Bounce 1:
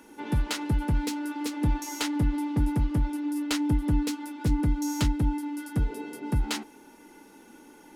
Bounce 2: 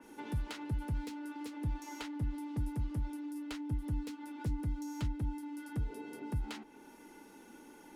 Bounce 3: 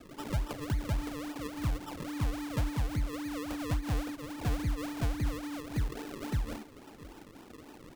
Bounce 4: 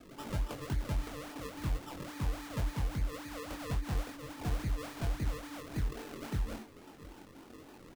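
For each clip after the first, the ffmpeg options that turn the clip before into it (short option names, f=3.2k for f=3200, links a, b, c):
-filter_complex "[0:a]acrossover=split=120|4600[a][b][c];[a]acompressor=threshold=-30dB:ratio=4[d];[b]acompressor=threshold=-39dB:ratio=4[e];[c]acompressor=threshold=-53dB:ratio=4[f];[d][e][f]amix=inputs=3:normalize=0,adynamicequalizer=threshold=0.00112:dfrequency=3400:dqfactor=0.7:tfrequency=3400:tqfactor=0.7:attack=5:release=100:ratio=0.375:range=1.5:mode=cutabove:tftype=highshelf,volume=-3.5dB"
-af "acrusher=samples=40:mix=1:aa=0.000001:lfo=1:lforange=40:lforate=3.6,aecho=1:1:681:0.0891,volume=4dB"
-filter_complex "[0:a]volume=26.5dB,asoftclip=hard,volume=-26.5dB,asplit=2[a][b];[b]adelay=22,volume=-4dB[c];[a][c]amix=inputs=2:normalize=0,volume=-3.5dB"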